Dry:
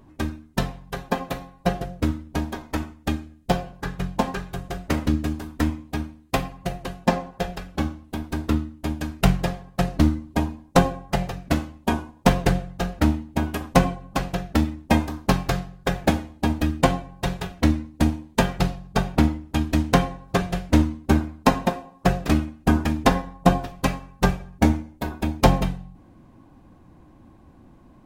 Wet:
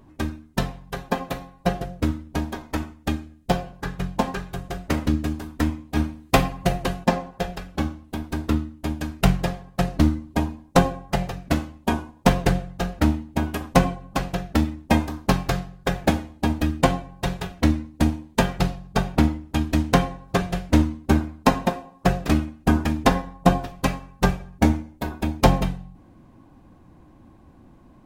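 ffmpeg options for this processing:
ffmpeg -i in.wav -filter_complex "[0:a]asplit=3[link_01][link_02][link_03];[link_01]afade=type=out:start_time=5.95:duration=0.02[link_04];[link_02]acontrast=85,afade=type=in:start_time=5.95:duration=0.02,afade=type=out:start_time=7.03:duration=0.02[link_05];[link_03]afade=type=in:start_time=7.03:duration=0.02[link_06];[link_04][link_05][link_06]amix=inputs=3:normalize=0" out.wav

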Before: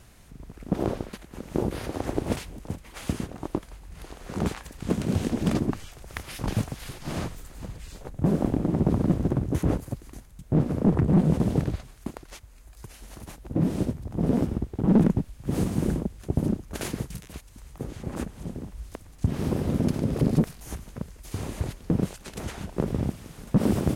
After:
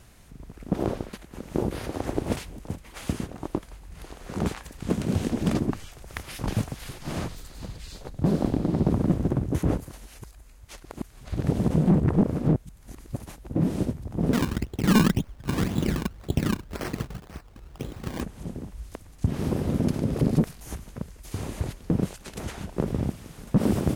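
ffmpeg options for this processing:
ffmpeg -i in.wav -filter_complex "[0:a]asettb=1/sr,asplit=3[link_01][link_02][link_03];[link_01]atrim=end=7.294[link_04];[link_02]atrim=start=7.29:end=8.89,asetpts=PTS-STARTPTS,afade=type=in:duration=0.004:curve=qsin,afade=type=out:start_time=1.596:duration=0.004:curve=qsin,equalizer=frequency=4300:width_type=o:width=0.77:gain=8[link_05];[link_03]atrim=start=8.886[link_06];[link_04][link_05]acrossfade=duration=0.004:curve1=hsin:curve2=qsin[link_07];[link_07][link_06]acrossfade=duration=0.004:curve1=qsin:curve2=hsin,asettb=1/sr,asplit=3[link_08][link_09][link_10];[link_08]atrim=end=14.334[link_11];[link_09]atrim=start=14.33:end=18.21,asetpts=PTS-STARTPTS,afade=type=in:duration=0.004:curve=qsin,afade=type=out:start_time=3.876:duration=0.004:curve=qsin,acrusher=samples=23:mix=1:aa=0.000001:lfo=1:lforange=23:lforate=1.9[link_12];[link_10]atrim=start=18.206[link_13];[link_11][link_12]acrossfade=duration=0.004:curve1=hsin:curve2=qsin[link_14];[link_14][link_13]acrossfade=duration=0.004:curve1=qsin:curve2=hsin,asplit=3[link_15][link_16][link_17];[link_15]atrim=end=9.892[link_18];[link_16]atrim=start=9.888:end=13.192,asetpts=PTS-STARTPTS,areverse[link_19];[link_17]atrim=start=13.188[link_20];[link_18][link_19]acrossfade=duration=0.004:curve1=hsin:curve2=hsin[link_21];[link_21][link_20]acrossfade=duration=0.004:curve1=hsin:curve2=hsin" out.wav

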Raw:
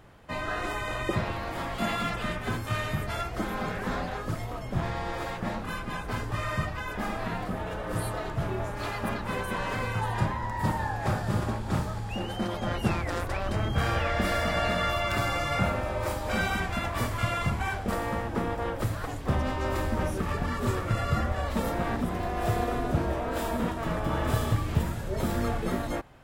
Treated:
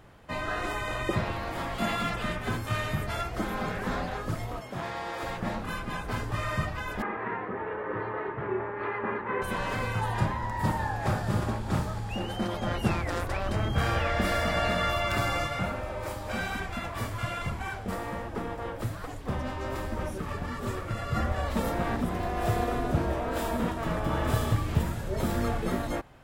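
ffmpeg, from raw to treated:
ffmpeg -i in.wav -filter_complex "[0:a]asettb=1/sr,asplit=3[link_01][link_02][link_03];[link_01]atrim=end=4.604[link_04];[link_02]atrim=start=4.6:end=5.23,asetpts=PTS-STARTPTS,afade=type=in:duration=0.004:curve=qsin,afade=type=out:start_time=0.626:duration=0.004:curve=qsin,highpass=frequency=380:poles=1[link_05];[link_03]atrim=start=5.226[link_06];[link_04][link_05]acrossfade=duration=0.004:curve1=hsin:curve2=qsin[link_07];[link_07][link_06]acrossfade=duration=0.004:curve1=qsin:curve2=hsin,asettb=1/sr,asplit=3[link_08][link_09][link_10];[link_08]atrim=end=7.024[link_11];[link_09]atrim=start=7.02:end=9.42,asetpts=PTS-STARTPTS,afade=type=in:duration=0.004:curve=qsin,afade=type=out:start_time=2.396:duration=0.004:curve=qsin,highpass=170,equalizer=frequency=170:width_type=q:width=4:gain=-8,equalizer=frequency=270:width_type=q:width=4:gain=-4,equalizer=frequency=410:width_type=q:width=4:gain=9,equalizer=frequency=670:width_type=q:width=4:gain=-9,equalizer=frequency=960:width_type=q:width=4:gain=5,equalizer=frequency=1900:width_type=q:width=4:gain=5,lowpass=frequency=2200:width=0.5412,lowpass=frequency=2200:width=1.3066[link_12];[link_10]atrim=start=9.416[link_13];[link_11][link_12]acrossfade=duration=0.004:curve1=hsin:curve2=qsin[link_14];[link_14][link_13]acrossfade=duration=0.004:curve1=qsin:curve2=hsin,asplit=3[link_15][link_16][link_17];[link_15]afade=type=out:start_time=15.46:duration=0.02[link_18];[link_16]flanger=delay=1.5:depth=9.4:regen=61:speed=1.2:shape=triangular,afade=type=in:start_time=15.46:duration=0.02,afade=type=out:start_time=21.14:duration=0.02[link_19];[link_17]afade=type=in:start_time=21.14:duration=0.02[link_20];[link_18][link_19][link_20]amix=inputs=3:normalize=0" out.wav

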